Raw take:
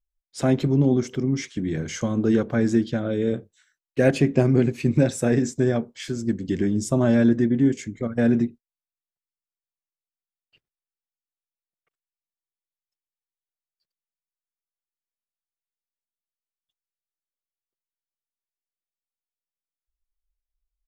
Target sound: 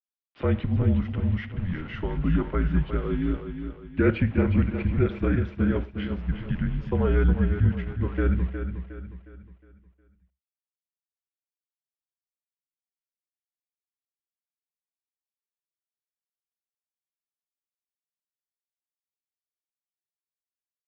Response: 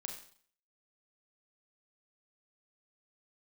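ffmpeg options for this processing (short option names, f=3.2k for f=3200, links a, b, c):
-filter_complex "[0:a]aeval=exprs='val(0)*gte(abs(val(0)),0.0126)':c=same,aecho=1:1:361|722|1083|1444|1805:0.376|0.154|0.0632|0.0259|0.0106,asplit=2[a][b];[1:a]atrim=start_sample=2205,atrim=end_sample=3528,adelay=48[c];[b][c]afir=irnorm=-1:irlink=0,volume=-14.5dB[d];[a][d]amix=inputs=2:normalize=0,highpass=f=210:t=q:w=0.5412,highpass=f=210:t=q:w=1.307,lowpass=f=3.2k:t=q:w=0.5176,lowpass=f=3.2k:t=q:w=0.7071,lowpass=f=3.2k:t=q:w=1.932,afreqshift=-170,volume=-1.5dB"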